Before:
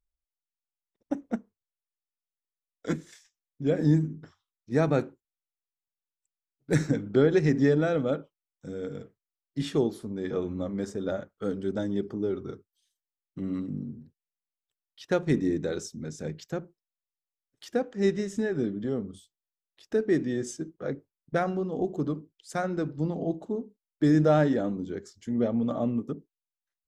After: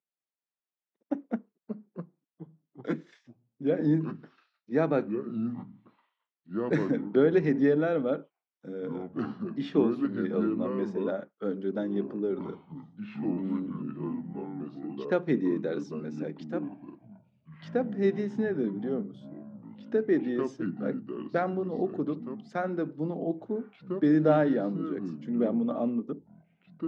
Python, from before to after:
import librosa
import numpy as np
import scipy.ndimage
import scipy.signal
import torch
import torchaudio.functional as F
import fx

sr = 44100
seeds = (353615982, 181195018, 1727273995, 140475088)

y = fx.air_absorb(x, sr, metres=260.0)
y = fx.echo_pitch(y, sr, ms=207, semitones=-5, count=3, db_per_echo=-6.0)
y = scipy.signal.sosfilt(scipy.signal.butter(4, 180.0, 'highpass', fs=sr, output='sos'), y)